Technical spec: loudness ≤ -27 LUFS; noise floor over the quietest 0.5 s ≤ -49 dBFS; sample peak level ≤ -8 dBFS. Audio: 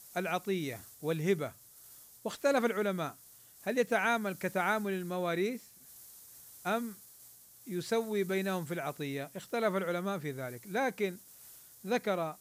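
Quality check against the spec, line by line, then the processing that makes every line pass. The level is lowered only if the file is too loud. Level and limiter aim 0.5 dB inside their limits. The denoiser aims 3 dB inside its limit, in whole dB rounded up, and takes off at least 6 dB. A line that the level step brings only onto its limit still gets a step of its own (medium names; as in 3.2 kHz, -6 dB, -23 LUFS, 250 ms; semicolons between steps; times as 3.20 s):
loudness -34.0 LUFS: pass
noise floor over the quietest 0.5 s -57 dBFS: pass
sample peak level -17.0 dBFS: pass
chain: none needed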